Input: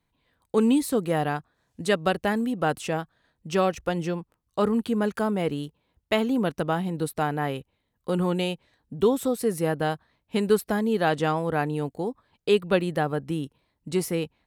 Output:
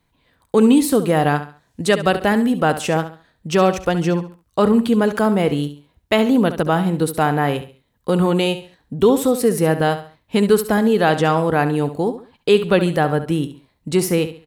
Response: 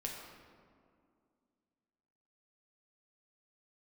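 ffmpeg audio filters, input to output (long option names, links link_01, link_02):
-filter_complex "[0:a]asplit=2[link_01][link_02];[link_02]alimiter=limit=-16.5dB:level=0:latency=1,volume=-1dB[link_03];[link_01][link_03]amix=inputs=2:normalize=0,aecho=1:1:69|138|207:0.251|0.0804|0.0257,volume=3.5dB"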